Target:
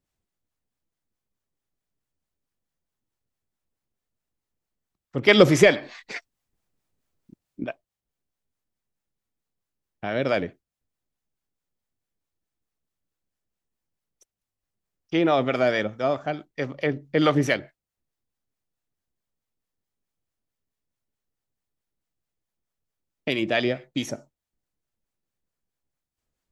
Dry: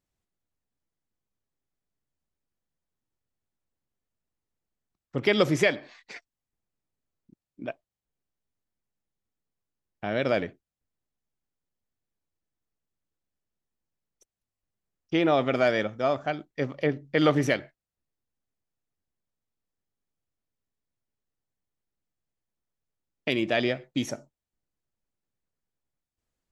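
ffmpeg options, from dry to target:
ffmpeg -i in.wav -filter_complex "[0:a]asettb=1/sr,asplit=3[link_01][link_02][link_03];[link_01]atrim=end=5.284[link_04];[link_02]atrim=start=5.28:end=7.64,asetpts=PTS-STARTPTS,afade=type=in:duration=0.004:curve=qsin,afade=type=out:start_time=2.356:duration=0.004:curve=qsin,acontrast=66[link_05];[link_03]atrim=start=7.636[link_06];[link_04][link_05]acrossfade=duration=0.004:curve1=hsin:curve2=qsin[link_07];[link_07][link_06]acrossfade=duration=0.004:curve1=qsin:curve2=hsin,acrossover=split=610[link_08][link_09];[link_08]aeval=exprs='val(0)*(1-0.5/2+0.5/2*cos(2*PI*4.6*n/s))':channel_layout=same[link_10];[link_09]aeval=exprs='val(0)*(1-0.5/2-0.5/2*cos(2*PI*4.6*n/s))':channel_layout=same[link_11];[link_10][link_11]amix=inputs=2:normalize=0,volume=4dB" out.wav

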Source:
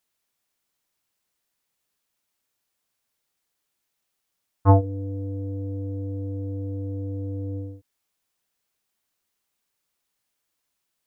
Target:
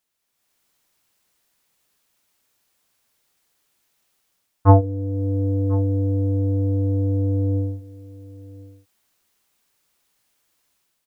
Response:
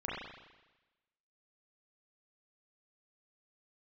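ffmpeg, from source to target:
-filter_complex "[0:a]dynaudnorm=framelen=160:gausssize=5:maxgain=9.5dB,asplit=2[link_01][link_02];[link_02]aecho=0:1:1042:0.106[link_03];[link_01][link_03]amix=inputs=2:normalize=0"

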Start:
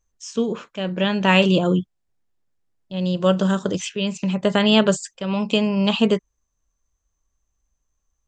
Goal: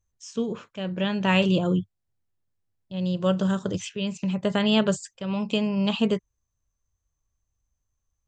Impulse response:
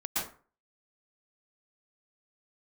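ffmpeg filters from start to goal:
-af "equalizer=frequency=100:width_type=o:width=0.9:gain=12.5,volume=-6.5dB"

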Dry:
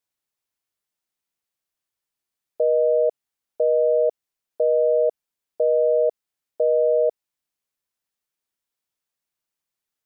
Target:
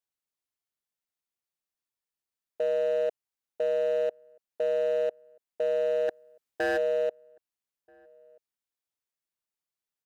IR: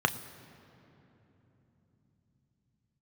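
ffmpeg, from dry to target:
-filter_complex "[0:a]asplit=3[link_01][link_02][link_03];[link_01]afade=type=out:start_time=6.08:duration=0.02[link_04];[link_02]acontrast=31,afade=type=in:start_time=6.08:duration=0.02,afade=type=out:start_time=6.76:duration=0.02[link_05];[link_03]afade=type=in:start_time=6.76:duration=0.02[link_06];[link_04][link_05][link_06]amix=inputs=3:normalize=0,aeval=exprs='0.211*(abs(mod(val(0)/0.211+3,4)-2)-1)':channel_layout=same,asplit=2[link_07][link_08];[link_08]adelay=1283,volume=-29dB,highshelf=frequency=4000:gain=-28.9[link_09];[link_07][link_09]amix=inputs=2:normalize=0,volume=-7.5dB"

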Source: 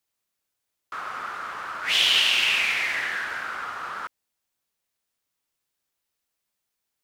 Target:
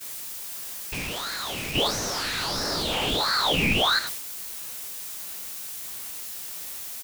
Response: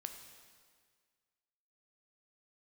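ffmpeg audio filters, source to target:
-filter_complex "[0:a]aeval=exprs='val(0)+0.5*0.0355*sgn(val(0))':channel_layout=same,agate=range=-33dB:threshold=-27dB:ratio=3:detection=peak,highshelf=frequency=4300:gain=11,acompressor=threshold=-33dB:ratio=6,asplit=2[link_01][link_02];[link_02]adelay=18,volume=-3dB[link_03];[link_01][link_03]amix=inputs=2:normalize=0,asoftclip=type=hard:threshold=-33.5dB,asettb=1/sr,asplit=3[link_04][link_05][link_06];[link_04]atrim=end=1.754[link_07];[link_05]atrim=start=1.75:end=3.99,asetpts=PTS-STARTPTS,afade=type=in:duration=0.004:curve=qsin,afade=type=out:start_time=2.236:duration=0.004:curve=qsin,equalizer=frequency=1200:width_type=o:width=1.1:gain=12.5[link_08];[link_06]atrim=start=3.986[link_09];[link_07][link_08]acrossfade=duration=0.004:curve1=hsin:curve2=qsin[link_10];[link_10][link_09]acrossfade=duration=0.004:curve1=qsin:curve2=hsin,aeval=exprs='val(0)*sin(2*PI*2000*n/s+2000*0.45/1.5*sin(2*PI*1.5*n/s))':channel_layout=same,volume=7.5dB"

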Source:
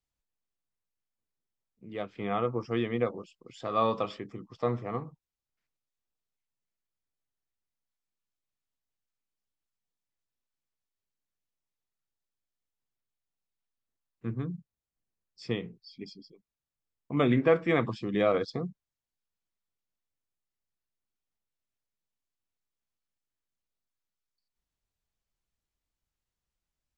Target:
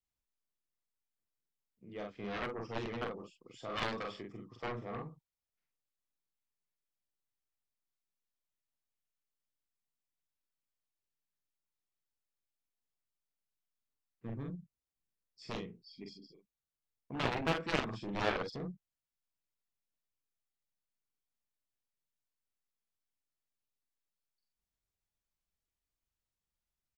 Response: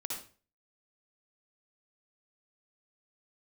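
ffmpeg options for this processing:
-filter_complex "[0:a]aeval=exprs='clip(val(0),-1,0.119)':channel_layout=same,asplit=2[link_01][link_02];[link_02]adelay=44,volume=-3dB[link_03];[link_01][link_03]amix=inputs=2:normalize=0,aeval=exprs='0.299*(cos(1*acos(clip(val(0)/0.299,-1,1)))-cos(1*PI/2))+0.0841*(cos(3*acos(clip(val(0)/0.299,-1,1)))-cos(3*PI/2))+0.015*(cos(6*acos(clip(val(0)/0.299,-1,1)))-cos(6*PI/2))+0.0376*(cos(7*acos(clip(val(0)/0.299,-1,1)))-cos(7*PI/2))+0.00422*(cos(8*acos(clip(val(0)/0.299,-1,1)))-cos(8*PI/2))':channel_layout=same,volume=-4dB"

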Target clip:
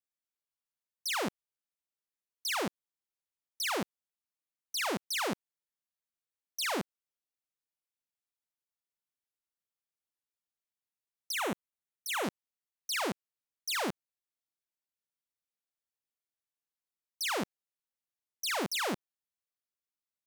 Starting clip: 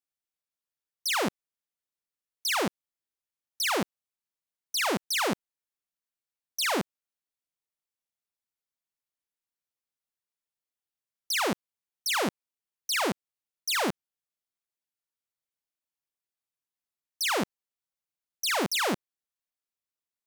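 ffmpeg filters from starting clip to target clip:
ffmpeg -i in.wav -filter_complex "[0:a]asettb=1/sr,asplit=3[link_01][link_02][link_03];[link_01]atrim=end=11.324[link_04];[link_02]atrim=start=11.32:end=12.24,asetpts=PTS-STARTPTS,afade=type=in:duration=0.004:curve=qsin,afade=type=out:start_time=0.916:duration=0.004:curve=qsin,equalizer=frequency=4800:width_type=o:width=0.33:gain=-13.5[link_05];[link_03]atrim=start=12.236[link_06];[link_04][link_05]acrossfade=duration=0.004:curve1=hsin:curve2=qsin[link_07];[link_07][link_06]acrossfade=duration=0.004:curve1=qsin:curve2=hsin,volume=-5.5dB" out.wav

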